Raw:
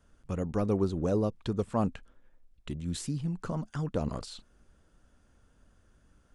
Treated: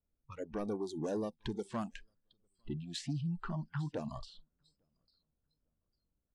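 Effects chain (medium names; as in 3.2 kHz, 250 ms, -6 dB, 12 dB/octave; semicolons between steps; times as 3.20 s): level-controlled noise filter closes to 720 Hz, open at -25 dBFS; compression 2.5:1, threshold -33 dBFS, peak gain reduction 7.5 dB; dynamic bell 770 Hz, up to -3 dB, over -48 dBFS, Q 1.1; saturation -32 dBFS, distortion -13 dB; 0.87–3.13 s: peaking EQ 7.5 kHz +5 dB 2 oct; feedback delay 851 ms, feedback 34%, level -19.5 dB; spectral noise reduction 25 dB; trim +3 dB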